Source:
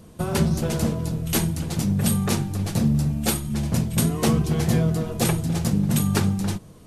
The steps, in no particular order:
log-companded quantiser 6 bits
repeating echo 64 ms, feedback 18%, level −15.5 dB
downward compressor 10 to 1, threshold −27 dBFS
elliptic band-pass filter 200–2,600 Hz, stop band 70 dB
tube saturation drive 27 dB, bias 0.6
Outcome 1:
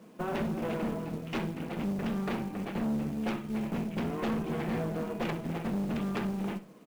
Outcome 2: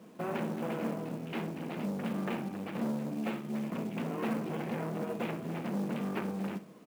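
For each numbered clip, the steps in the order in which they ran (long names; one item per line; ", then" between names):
elliptic band-pass filter, then tube saturation, then downward compressor, then log-companded quantiser, then repeating echo
tube saturation, then repeating echo, then downward compressor, then elliptic band-pass filter, then log-companded quantiser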